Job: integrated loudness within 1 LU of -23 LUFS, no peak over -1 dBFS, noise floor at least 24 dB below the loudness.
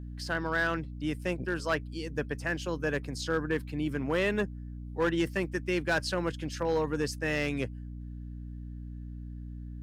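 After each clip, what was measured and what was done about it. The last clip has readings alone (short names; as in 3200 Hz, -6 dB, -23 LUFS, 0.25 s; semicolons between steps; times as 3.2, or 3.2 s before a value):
clipped 0.5%; flat tops at -21.0 dBFS; hum 60 Hz; harmonics up to 300 Hz; hum level -38 dBFS; loudness -31.5 LUFS; peak -21.0 dBFS; loudness target -23.0 LUFS
-> clip repair -21 dBFS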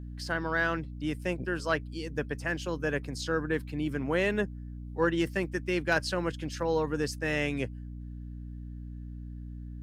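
clipped 0.0%; hum 60 Hz; harmonics up to 300 Hz; hum level -38 dBFS
-> notches 60/120/180/240/300 Hz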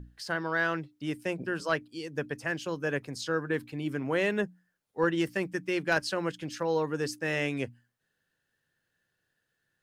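hum none; loudness -31.5 LUFS; peak -12.0 dBFS; loudness target -23.0 LUFS
-> gain +8.5 dB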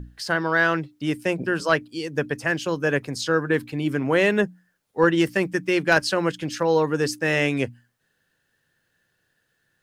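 loudness -23.0 LUFS; peak -3.5 dBFS; noise floor -72 dBFS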